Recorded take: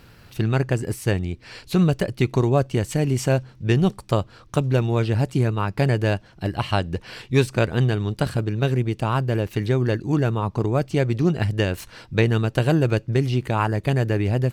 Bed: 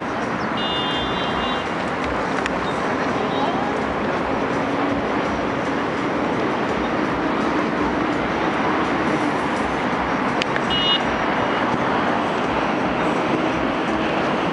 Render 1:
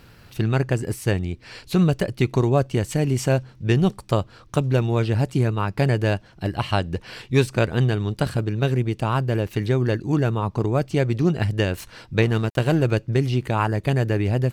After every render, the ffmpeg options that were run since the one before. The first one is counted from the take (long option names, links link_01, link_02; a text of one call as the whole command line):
ffmpeg -i in.wav -filter_complex "[0:a]asettb=1/sr,asplit=3[link_01][link_02][link_03];[link_01]atrim=end=12.224[link_04];[link_02]atrim=start=12.22:end=12.82,asetpts=PTS-STARTPTS,afade=type=in:duration=0.004:curve=qsin,afade=type=out:start_time=0.596:duration=0.004:curve=qsin,aeval=exprs='sgn(val(0))*max(abs(val(0))-0.0168,0)':channel_layout=same[link_05];[link_03]atrim=start=12.816[link_06];[link_04][link_05]acrossfade=duration=0.004:curve1=hsin:curve2=qsin[link_07];[link_07][link_06]acrossfade=duration=0.004:curve1=qsin:curve2=hsin" out.wav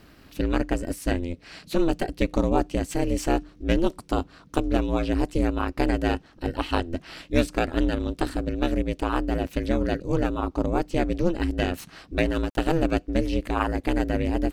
ffmpeg -i in.wav -filter_complex "[0:a]aeval=exprs='val(0)*sin(2*PI*170*n/s)':channel_layout=same,acrossover=split=2800[link_01][link_02];[link_02]asoftclip=type=hard:threshold=-28dB[link_03];[link_01][link_03]amix=inputs=2:normalize=0" out.wav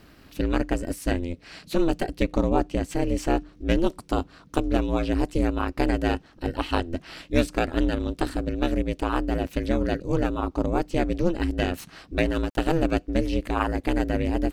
ffmpeg -i in.wav -filter_complex "[0:a]asettb=1/sr,asplit=3[link_01][link_02][link_03];[link_01]atrim=end=2.234[link_04];[link_02]atrim=start=2.23:end=3.53,asetpts=PTS-STARTPTS,afade=type=in:duration=0.004:curve=qsin,afade=type=out:start_time=1.296:duration=0.004:curve=qsin,highshelf=frequency=5100:gain=-5.5[link_05];[link_03]atrim=start=3.526[link_06];[link_04][link_05]acrossfade=duration=0.004:curve1=hsin:curve2=qsin[link_07];[link_07][link_06]acrossfade=duration=0.004:curve1=qsin:curve2=hsin" out.wav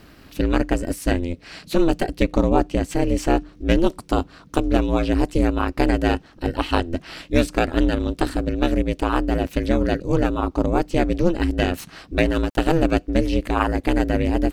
ffmpeg -i in.wav -af "volume=4.5dB,alimiter=limit=-2dB:level=0:latency=1" out.wav